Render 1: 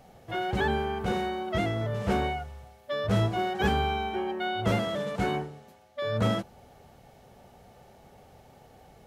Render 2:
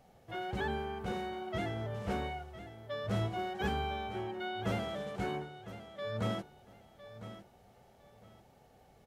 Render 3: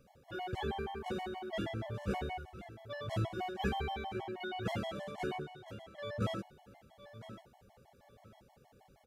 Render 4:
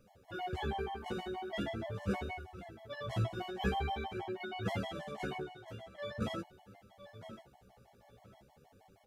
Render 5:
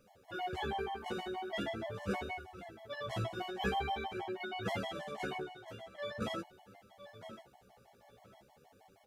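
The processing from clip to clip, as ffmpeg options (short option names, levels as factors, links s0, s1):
-af "aecho=1:1:1007|2014|3021:0.224|0.0515|0.0118,volume=0.376"
-af "afftfilt=real='re*gt(sin(2*PI*6.3*pts/sr)*(1-2*mod(floor(b*sr/1024/570),2)),0)':imag='im*gt(sin(2*PI*6.3*pts/sr)*(1-2*mod(floor(b*sr/1024/570),2)),0)':win_size=1024:overlap=0.75,volume=1.19"
-af "flanger=delay=9.9:depth=7.1:regen=14:speed=0.44:shape=sinusoidal,volume=1.5"
-af "lowshelf=f=200:g=-9.5,volume=1.26"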